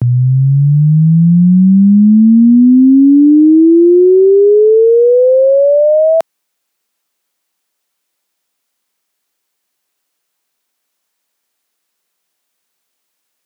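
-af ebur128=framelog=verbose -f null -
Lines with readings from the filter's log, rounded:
Integrated loudness:
  I:          -7.3 LUFS
  Threshold: -20.5 LUFS
Loudness range:
  LRA:         9.3 LU
  Threshold: -30.4 LUFS
  LRA low:   -15.6 LUFS
  LRA high:   -6.3 LUFS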